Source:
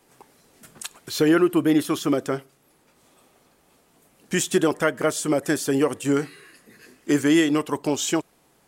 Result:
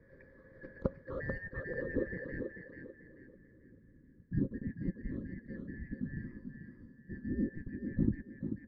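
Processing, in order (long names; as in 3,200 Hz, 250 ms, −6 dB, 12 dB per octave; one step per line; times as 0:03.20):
band-splitting scrambler in four parts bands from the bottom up 3142
low-pass filter 5,700 Hz
low-shelf EQ 380 Hz +11.5 dB
reversed playback
downward compressor 6 to 1, threshold −31 dBFS, peak gain reduction 16.5 dB
reversed playback
phaser with its sweep stopped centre 2,700 Hz, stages 6
hollow resonant body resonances 530/1,700 Hz, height 13 dB, ringing for 85 ms
noise that follows the level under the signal 27 dB
low-pass filter sweep 580 Hz → 250 Hz, 0:01.05–0:03.98
on a send: feedback echo with a high-pass in the loop 439 ms, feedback 33%, high-pass 170 Hz, level −5.5 dB
on the sum: level +6.5 dB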